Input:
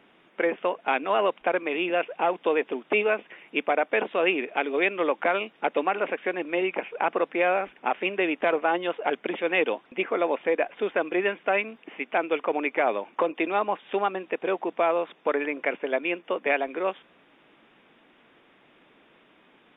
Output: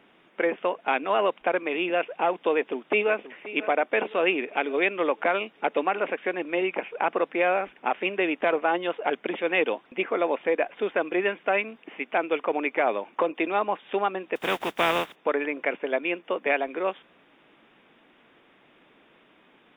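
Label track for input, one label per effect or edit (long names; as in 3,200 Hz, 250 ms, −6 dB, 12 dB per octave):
2.540000	3.150000	delay throw 530 ms, feedback 50%, level −15 dB
14.350000	15.140000	compressing power law on the bin magnitudes exponent 0.43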